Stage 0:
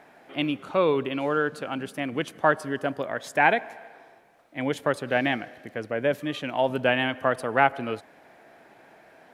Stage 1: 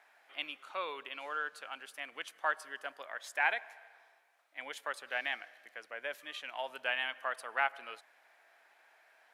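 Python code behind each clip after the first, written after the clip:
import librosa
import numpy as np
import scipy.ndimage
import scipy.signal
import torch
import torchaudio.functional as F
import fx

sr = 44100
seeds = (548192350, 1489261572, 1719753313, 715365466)

y = scipy.signal.sosfilt(scipy.signal.butter(2, 1100.0, 'highpass', fs=sr, output='sos'), x)
y = F.gain(torch.from_numpy(y), -7.0).numpy()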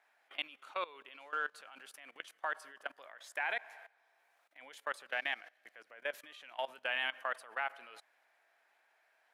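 y = fx.level_steps(x, sr, step_db=19)
y = F.gain(torch.from_numpy(y), 3.0).numpy()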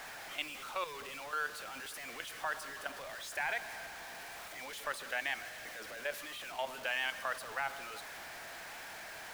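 y = x + 0.5 * 10.0 ** (-40.0 / 20.0) * np.sign(x)
y = F.gain(torch.from_numpy(y), -1.5).numpy()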